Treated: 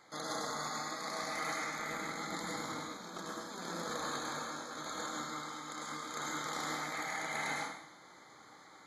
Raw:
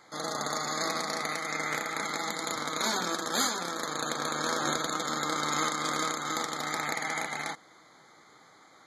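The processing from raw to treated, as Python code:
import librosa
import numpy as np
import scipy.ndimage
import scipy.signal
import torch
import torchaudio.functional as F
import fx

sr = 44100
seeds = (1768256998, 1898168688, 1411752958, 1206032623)

y = fx.low_shelf(x, sr, hz=370.0, db=8.5, at=(1.79, 3.9))
y = fx.over_compress(y, sr, threshold_db=-35.0, ratio=-0.5)
y = fx.rev_plate(y, sr, seeds[0], rt60_s=0.7, hf_ratio=0.95, predelay_ms=90, drr_db=-3.0)
y = y * 10.0 ** (-9.0 / 20.0)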